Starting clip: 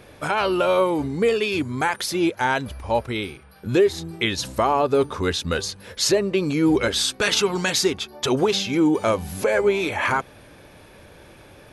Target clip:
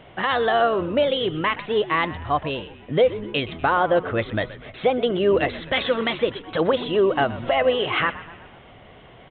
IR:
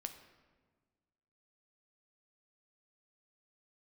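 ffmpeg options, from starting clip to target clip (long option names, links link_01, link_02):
-filter_complex "[0:a]asetrate=55566,aresample=44100,aresample=8000,aresample=44100,asplit=6[link_01][link_02][link_03][link_04][link_05][link_06];[link_02]adelay=123,afreqshift=-80,volume=-16dB[link_07];[link_03]adelay=246,afreqshift=-160,volume=-21.4dB[link_08];[link_04]adelay=369,afreqshift=-240,volume=-26.7dB[link_09];[link_05]adelay=492,afreqshift=-320,volume=-32.1dB[link_10];[link_06]adelay=615,afreqshift=-400,volume=-37.4dB[link_11];[link_01][link_07][link_08][link_09][link_10][link_11]amix=inputs=6:normalize=0"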